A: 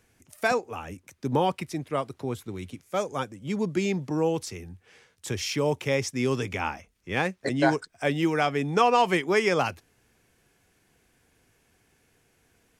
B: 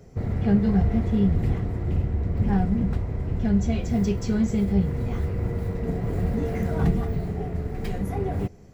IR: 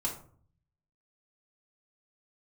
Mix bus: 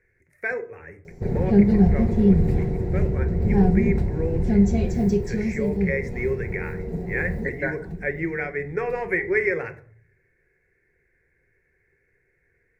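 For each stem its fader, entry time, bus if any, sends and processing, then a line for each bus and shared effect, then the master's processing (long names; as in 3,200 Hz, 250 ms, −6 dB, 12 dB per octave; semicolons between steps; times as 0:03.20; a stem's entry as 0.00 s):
−5.0 dB, 0.00 s, send −6.5 dB, drawn EQ curve 120 Hz 0 dB, 190 Hz −14 dB, 490 Hz −1 dB, 830 Hz −15 dB, 2,000 Hz +13 dB, 3,000 Hz −20 dB
0:04.85 −1 dB → 0:05.58 −8 dB → 0:07.41 −8 dB → 0:07.63 −19.5 dB, 1.05 s, send −10 dB, no processing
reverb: on, RT60 0.50 s, pre-delay 4 ms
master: thirty-one-band graphic EQ 160 Hz +5 dB, 400 Hz +9 dB, 1,250 Hz −11 dB, 3,150 Hz −9 dB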